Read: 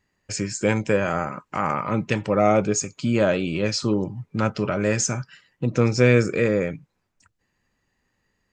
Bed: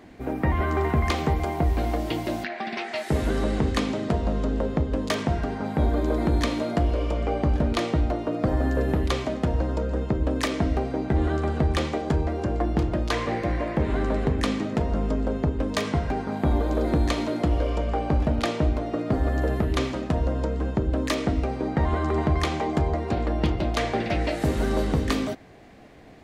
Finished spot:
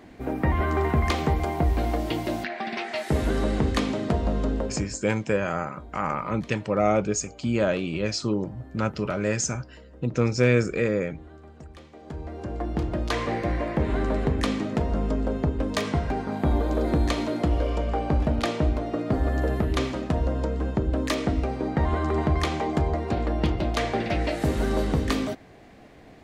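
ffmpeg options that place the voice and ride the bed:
-filter_complex "[0:a]adelay=4400,volume=-3.5dB[a];[1:a]volume=21.5dB,afade=t=out:st=4.5:d=0.49:silence=0.0794328,afade=t=in:st=11.92:d=1.3:silence=0.0841395[b];[a][b]amix=inputs=2:normalize=0"

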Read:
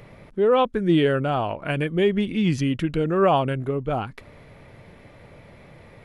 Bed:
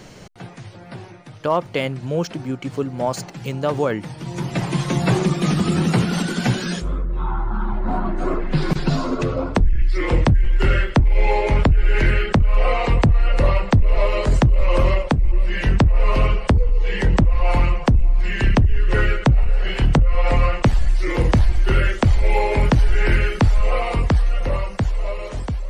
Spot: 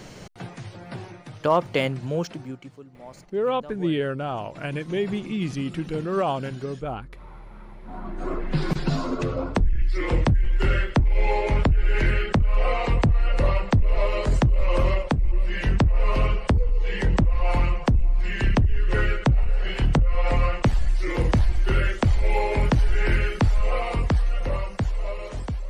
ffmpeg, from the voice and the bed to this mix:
-filter_complex "[0:a]adelay=2950,volume=-5.5dB[a];[1:a]volume=16dB,afade=t=out:st=1.8:d=0.98:silence=0.0944061,afade=t=in:st=7.83:d=0.66:silence=0.149624[b];[a][b]amix=inputs=2:normalize=0"

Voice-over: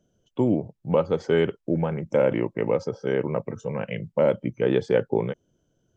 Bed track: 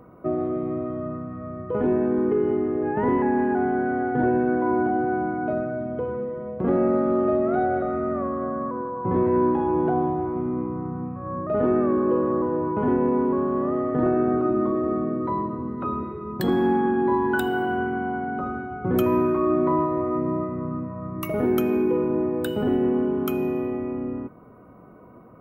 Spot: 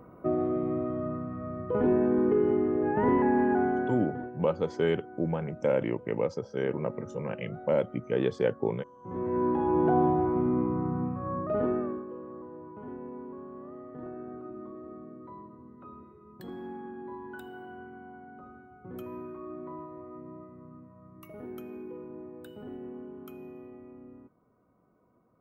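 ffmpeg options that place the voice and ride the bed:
-filter_complex "[0:a]adelay=3500,volume=-5.5dB[a];[1:a]volume=20dB,afade=t=out:st=3.56:d=0.75:silence=0.1,afade=t=in:st=9:d=1.06:silence=0.0749894,afade=t=out:st=11.05:d=1.01:silence=0.1[b];[a][b]amix=inputs=2:normalize=0"

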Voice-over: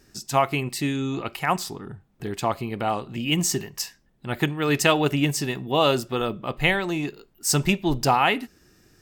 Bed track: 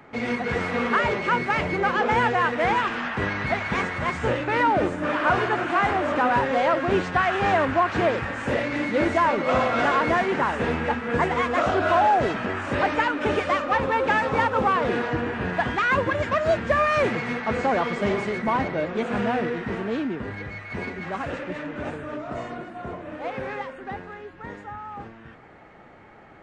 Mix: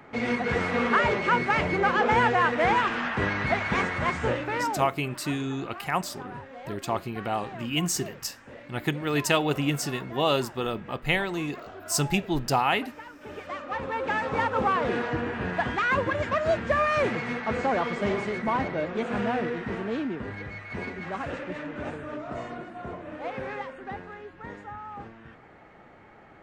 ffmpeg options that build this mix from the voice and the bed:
-filter_complex "[0:a]adelay=4450,volume=-4dB[a];[1:a]volume=17.5dB,afade=t=out:st=4.08:d=0.9:silence=0.0944061,afade=t=in:st=13.21:d=1.42:silence=0.125893[b];[a][b]amix=inputs=2:normalize=0"

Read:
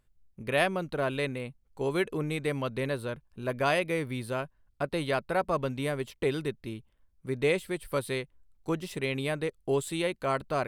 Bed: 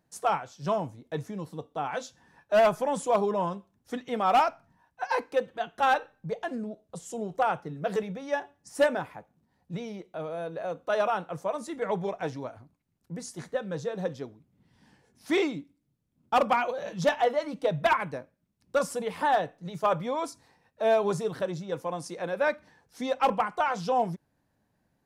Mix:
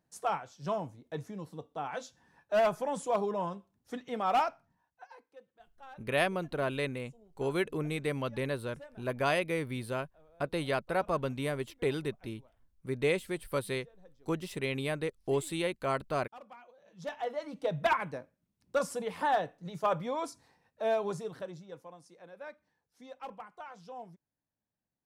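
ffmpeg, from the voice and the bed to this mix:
-filter_complex "[0:a]adelay=5600,volume=-2.5dB[a];[1:a]volume=18dB,afade=t=out:st=4.43:d=0.71:silence=0.0794328,afade=t=in:st=16.85:d=0.98:silence=0.0668344,afade=t=out:st=20.49:d=1.5:silence=0.16788[b];[a][b]amix=inputs=2:normalize=0"

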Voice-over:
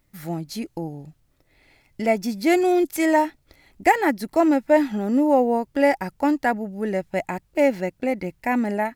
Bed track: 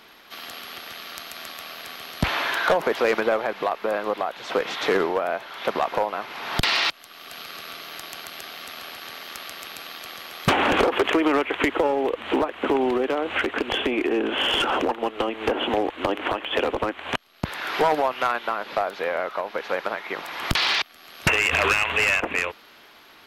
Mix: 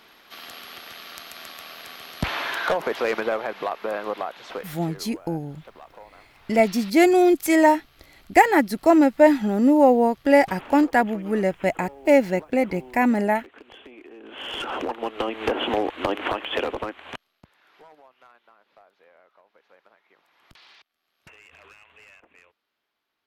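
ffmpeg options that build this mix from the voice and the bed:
-filter_complex "[0:a]adelay=4500,volume=2.5dB[a];[1:a]volume=18.5dB,afade=t=out:st=4.23:d=0.57:silence=0.112202,afade=t=in:st=14.2:d=1.17:silence=0.0841395,afade=t=out:st=16.38:d=1.09:silence=0.0316228[b];[a][b]amix=inputs=2:normalize=0"

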